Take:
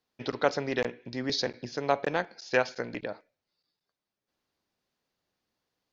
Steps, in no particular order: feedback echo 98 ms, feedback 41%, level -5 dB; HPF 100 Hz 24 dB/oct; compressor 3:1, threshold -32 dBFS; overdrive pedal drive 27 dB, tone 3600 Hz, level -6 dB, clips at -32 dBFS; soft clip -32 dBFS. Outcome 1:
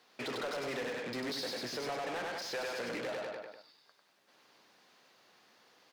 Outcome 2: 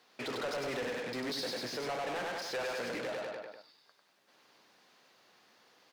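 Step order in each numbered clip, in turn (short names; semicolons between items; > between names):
compressor > feedback echo > overdrive pedal > HPF > soft clip; feedback echo > overdrive pedal > HPF > soft clip > compressor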